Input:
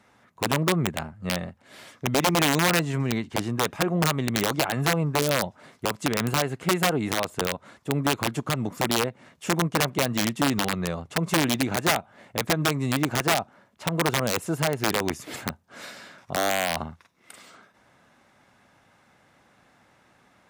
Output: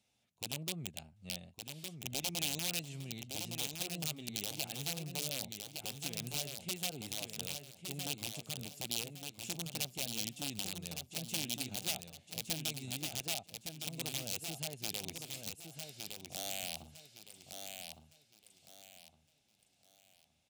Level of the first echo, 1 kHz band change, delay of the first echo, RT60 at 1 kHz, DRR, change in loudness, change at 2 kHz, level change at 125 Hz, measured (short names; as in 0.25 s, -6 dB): -6.0 dB, -24.0 dB, 1.162 s, none, none, -14.0 dB, -18.5 dB, -18.0 dB